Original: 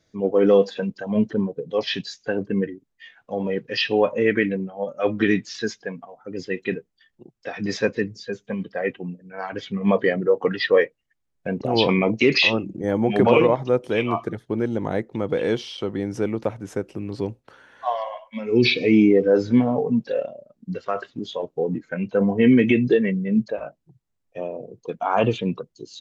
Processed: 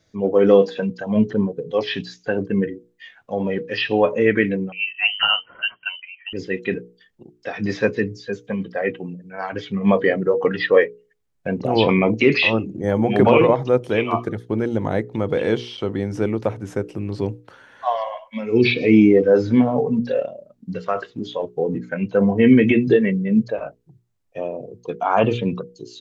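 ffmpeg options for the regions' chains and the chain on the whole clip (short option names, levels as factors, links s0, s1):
-filter_complex "[0:a]asettb=1/sr,asplit=3[s0][s1][s2];[s0]atrim=end=4.724[s3];[s1]atrim=start=4.72:end=6.33,asetpts=PTS-STARTPTS,afade=t=in:d=0.004:c=qsin,afade=t=out:st=1.606:d=0.004:c=qsin,aecho=1:1:2.3:0.33,atrim=end_sample=71001,lowpass=f=2700:t=q:w=0.5098,lowpass=f=2700:t=q:w=0.6013,lowpass=f=2700:t=q:w=0.9,lowpass=f=2700:t=q:w=2.563,afreqshift=-3200[s4];[s2]atrim=start=6.326[s5];[s3][s4]acrossfade=d=0.004:c1=hsin:c2=qsin[s6];[s6][s5]acrossfade=d=0.004:c1=qsin:c2=hsin,equalizer=f=100:w=2.1:g=4,bandreject=f=60:t=h:w=6,bandreject=f=120:t=h:w=6,bandreject=f=180:t=h:w=6,bandreject=f=240:t=h:w=6,bandreject=f=300:t=h:w=6,bandreject=f=360:t=h:w=6,bandreject=f=420:t=h:w=6,bandreject=f=480:t=h:w=6,acrossover=split=3400[s7][s8];[s8]acompressor=threshold=0.00562:ratio=4:attack=1:release=60[s9];[s7][s9]amix=inputs=2:normalize=0,volume=1.41"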